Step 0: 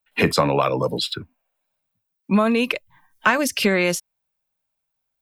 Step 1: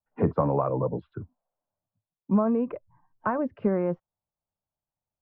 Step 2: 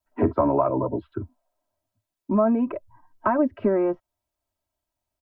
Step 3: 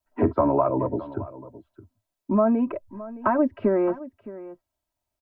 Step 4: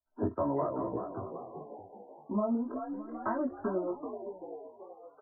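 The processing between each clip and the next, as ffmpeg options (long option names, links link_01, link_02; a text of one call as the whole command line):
ffmpeg -i in.wav -af "lowpass=frequency=1100:width=0.5412,lowpass=frequency=1100:width=1.3066,equalizer=frequency=100:width=1.2:gain=6,volume=-5.5dB" out.wav
ffmpeg -i in.wav -filter_complex "[0:a]asplit=2[link_01][link_02];[link_02]acompressor=threshold=-31dB:ratio=6,volume=-1dB[link_03];[link_01][link_03]amix=inputs=2:normalize=0,aecho=1:1:3.1:0.88" out.wav
ffmpeg -i in.wav -af "aecho=1:1:616:0.141" out.wav
ffmpeg -i in.wav -filter_complex "[0:a]flanger=delay=17:depth=4.6:speed=0.94,asplit=8[link_01][link_02][link_03][link_04][link_05][link_06][link_07][link_08];[link_02]adelay=384,afreqshift=51,volume=-8.5dB[link_09];[link_03]adelay=768,afreqshift=102,volume=-13.4dB[link_10];[link_04]adelay=1152,afreqshift=153,volume=-18.3dB[link_11];[link_05]adelay=1536,afreqshift=204,volume=-23.1dB[link_12];[link_06]adelay=1920,afreqshift=255,volume=-28dB[link_13];[link_07]adelay=2304,afreqshift=306,volume=-32.9dB[link_14];[link_08]adelay=2688,afreqshift=357,volume=-37.8dB[link_15];[link_01][link_09][link_10][link_11][link_12][link_13][link_14][link_15]amix=inputs=8:normalize=0,afftfilt=real='re*lt(b*sr/1024,1000*pow(2100/1000,0.5+0.5*sin(2*PI*0.39*pts/sr)))':imag='im*lt(b*sr/1024,1000*pow(2100/1000,0.5+0.5*sin(2*PI*0.39*pts/sr)))':win_size=1024:overlap=0.75,volume=-8dB" out.wav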